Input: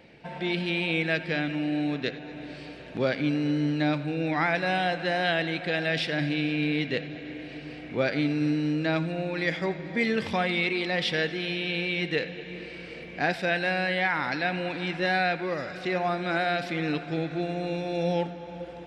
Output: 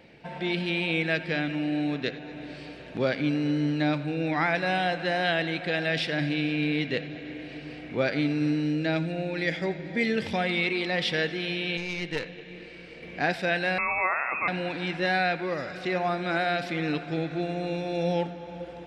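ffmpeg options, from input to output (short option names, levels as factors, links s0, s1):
-filter_complex "[0:a]asettb=1/sr,asplit=3[s0][s1][s2];[s0]atrim=end=8.644[s3];[s1]atrim=start=8.64:end=10.46,asetpts=PTS-STARTPTS,afade=t=in:d=0.004:c=qsin,afade=t=out:st=1.816:d=0.004:c=qsin,equalizer=f=1100:w=3.4:g=-9[s4];[s2]atrim=start=10.456[s5];[s3][s4]acrossfade=d=0.004:c1=hsin:c2=qsin[s6];[s6][s5]acrossfade=d=0.004:c1=qsin:c2=hsin,asettb=1/sr,asplit=3[s7][s8][s9];[s7]atrim=end=11.774[s10];[s8]atrim=start=11.77:end=13.03,asetpts=PTS-STARTPTS,afade=t=in:d=0.004:c=qsin,afade=t=out:st=1.256:d=0.004:c=qsin,aeval=exprs='(tanh(11.2*val(0)+0.75)-tanh(0.75))/11.2':c=same[s11];[s9]atrim=start=13.026[s12];[s10][s11]acrossfade=d=0.004:c1=hsin:c2=qsin[s13];[s13][s12]acrossfade=d=0.004:c1=qsin:c2=hsin,asettb=1/sr,asplit=3[s14][s15][s16];[s14]atrim=end=13.784[s17];[s15]atrim=start=13.78:end=14.48,asetpts=PTS-STARTPTS,afade=t=in:d=0.004:c=qsin,afade=t=out:st=0.696:d=0.004:c=qsin,lowpass=f=2400:t=q:w=0.5098,lowpass=f=2400:t=q:w=0.6013,lowpass=f=2400:t=q:w=0.9,lowpass=f=2400:t=q:w=2.563,afreqshift=-2800[s18];[s16]atrim=start=14.476[s19];[s17][s18]acrossfade=d=0.004:c1=hsin:c2=qsin[s20];[s20][s19]acrossfade=d=0.004:c1=qsin:c2=hsin"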